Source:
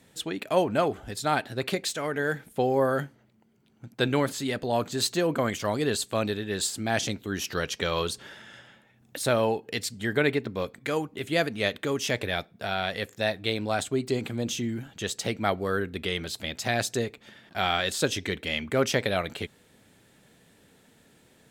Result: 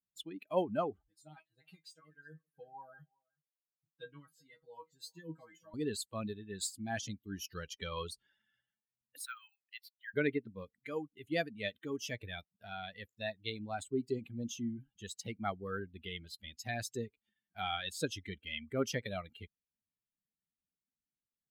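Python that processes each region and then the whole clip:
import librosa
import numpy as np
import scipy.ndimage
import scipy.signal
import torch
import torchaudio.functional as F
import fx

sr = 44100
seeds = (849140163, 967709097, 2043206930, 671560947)

y = fx.chain(x, sr, fx.comb_fb(f0_hz=160.0, decay_s=0.17, harmonics='all', damping=0.0, mix_pct=100),
    fx.echo_single(ms=370, db=-16.0), at=(1.03, 5.74))
y = fx.chain(y, sr, fx.block_float(bits=7),
    fx.ellip_highpass(hz=1300.0, order=4, stop_db=80),
    fx.peak_eq(hz=7300.0, db=-15.0, octaves=0.94), at=(9.25, 10.14))
y = fx.bin_expand(y, sr, power=2.0)
y = fx.peak_eq(y, sr, hz=280.0, db=3.5, octaves=0.75)
y = F.gain(torch.from_numpy(y), -6.5).numpy()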